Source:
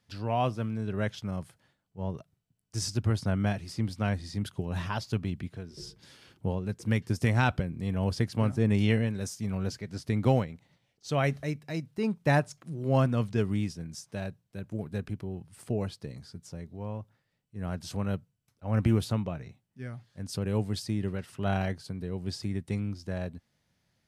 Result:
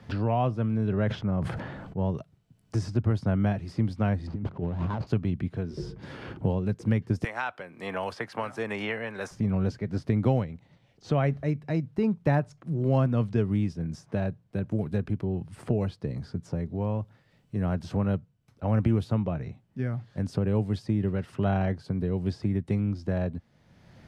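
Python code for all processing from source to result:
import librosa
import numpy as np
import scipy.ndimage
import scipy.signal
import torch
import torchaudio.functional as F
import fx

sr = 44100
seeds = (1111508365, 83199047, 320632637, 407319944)

y = fx.chain(x, sr, fx.high_shelf(hz=8000.0, db=-10.5),
    fx.sustainer(db_per_s=53.0), at=(0.74, 2.06))
y = fx.chain(y, sr, fx.median_filter(points=25),
    fx.air_absorb(metres=87.0),
    fx.over_compress(threshold_db=-39.0, ratio=-1.0), at=(4.27, 5.07))
y = fx.chain(y, sr, fx.highpass(hz=900.0, slope=12),
    fx.high_shelf(hz=5900.0, db=7.0),
    fx.band_squash(depth_pct=70), at=(7.24, 9.31))
y = fx.lowpass(y, sr, hz=1100.0, slope=6)
y = fx.band_squash(y, sr, depth_pct=70)
y = y * 10.0 ** (4.5 / 20.0)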